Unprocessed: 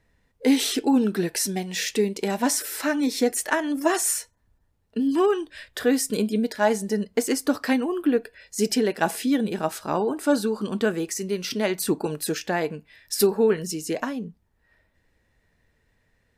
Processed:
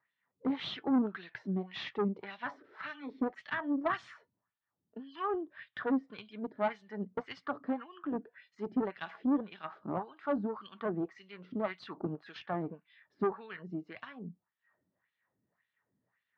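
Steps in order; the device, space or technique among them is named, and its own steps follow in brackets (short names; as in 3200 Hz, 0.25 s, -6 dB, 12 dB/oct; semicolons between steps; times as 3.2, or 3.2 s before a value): wah-wah guitar rig (wah 1.8 Hz 260–3500 Hz, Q 2.2; tube stage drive 22 dB, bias 0.5; speaker cabinet 84–3500 Hz, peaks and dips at 120 Hz +10 dB, 180 Hz +7 dB, 470 Hz -6 dB, 1200 Hz +7 dB, 2600 Hz -6 dB); 9.84–10.4 dynamic EQ 1900 Hz, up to -4 dB, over -47 dBFS, Q 0.97; gain -2 dB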